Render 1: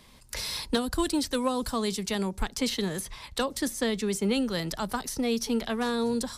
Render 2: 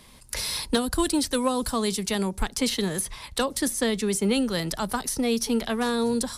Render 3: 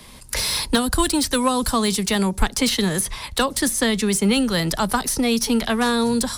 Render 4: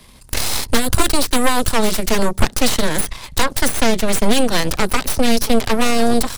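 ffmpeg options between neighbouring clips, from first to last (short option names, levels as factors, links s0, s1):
-af "equalizer=f=10000:w=2.3:g=6.5,volume=1.41"
-filter_complex "[0:a]acrossover=split=250|690|2300[s0][s1][s2][s3];[s1]acompressor=threshold=0.0178:ratio=6[s4];[s3]asoftclip=type=tanh:threshold=0.0631[s5];[s0][s4][s2][s5]amix=inputs=4:normalize=0,volume=2.51"
-af "aeval=exprs='0.501*(cos(1*acos(clip(val(0)/0.501,-1,1)))-cos(1*PI/2))+0.0355*(cos(3*acos(clip(val(0)/0.501,-1,1)))-cos(3*PI/2))+0.224*(cos(6*acos(clip(val(0)/0.501,-1,1)))-cos(6*PI/2))':c=same,lowshelf=f=150:g=4.5,volume=0.841"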